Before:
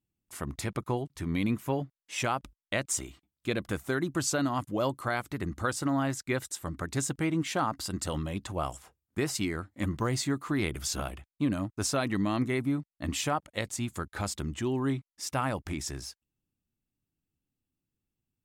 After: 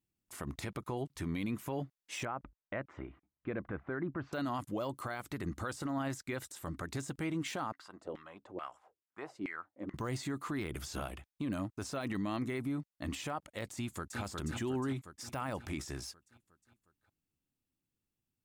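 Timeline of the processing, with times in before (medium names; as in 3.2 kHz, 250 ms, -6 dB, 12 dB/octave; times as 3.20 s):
2.25–4.33 s: low-pass 1.9 kHz 24 dB/octave
7.72–9.94 s: LFO band-pass saw down 2.3 Hz 320–2200 Hz
13.74–14.21 s: echo throw 360 ms, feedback 60%, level -6.5 dB
whole clip: bass shelf 170 Hz -4 dB; de-esser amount 95%; peak limiter -27 dBFS; trim -1 dB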